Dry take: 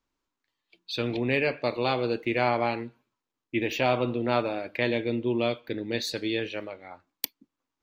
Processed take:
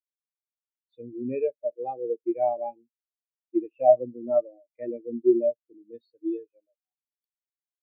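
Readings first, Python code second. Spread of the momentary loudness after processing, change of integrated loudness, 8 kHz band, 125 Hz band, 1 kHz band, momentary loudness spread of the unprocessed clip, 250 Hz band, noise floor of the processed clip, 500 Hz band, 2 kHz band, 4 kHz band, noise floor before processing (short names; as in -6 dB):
16 LU, +1.5 dB, under -35 dB, under -15 dB, -1.5 dB, 10 LU, -1.0 dB, under -85 dBFS, +3.0 dB, under -25 dB, under -40 dB, under -85 dBFS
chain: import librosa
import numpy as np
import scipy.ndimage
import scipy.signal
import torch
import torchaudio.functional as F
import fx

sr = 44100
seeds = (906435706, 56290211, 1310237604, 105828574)

y = fx.spectral_expand(x, sr, expansion=4.0)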